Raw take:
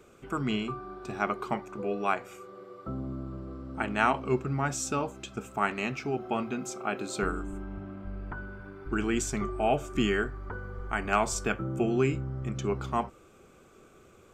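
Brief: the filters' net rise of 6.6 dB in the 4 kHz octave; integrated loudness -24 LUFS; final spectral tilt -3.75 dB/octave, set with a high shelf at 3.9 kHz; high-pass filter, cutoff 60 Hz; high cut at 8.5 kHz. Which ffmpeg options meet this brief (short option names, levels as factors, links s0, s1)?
-af "highpass=60,lowpass=8500,highshelf=f=3900:g=8.5,equalizer=f=4000:t=o:g=4.5,volume=2"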